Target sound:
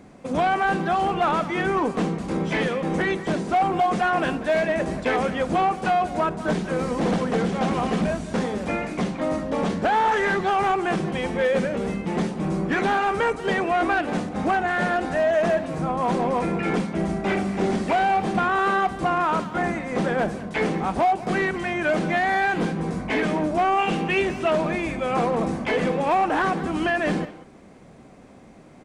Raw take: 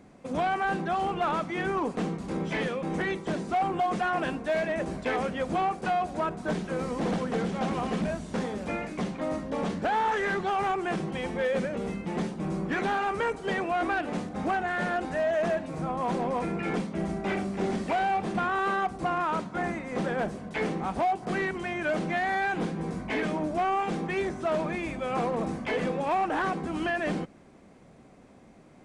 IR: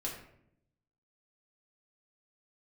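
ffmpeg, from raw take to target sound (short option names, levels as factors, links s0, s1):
-filter_complex "[0:a]asettb=1/sr,asplit=3[s0][s1][s2];[s0]atrim=end=23.784[s3];[s1]atrim=start=23.78:end=24.51,asetpts=PTS-STARTPTS,afade=t=in:d=0.004:c=qsin,afade=t=out:st=0.726:d=0.004:c=qsin,equalizer=f=2800:w=5.1:g=13.5[s4];[s2]atrim=start=24.506[s5];[s3][s4]acrossfade=d=0.004:c1=hsin:c2=qsin[s6];[s6][s5]acrossfade=d=0.004:c1=qsin:c2=hsin,asplit=2[s7][s8];[s8]adelay=190,highpass=300,lowpass=3400,asoftclip=type=hard:threshold=0.0501,volume=0.2[s9];[s7][s9]amix=inputs=2:normalize=0,volume=2"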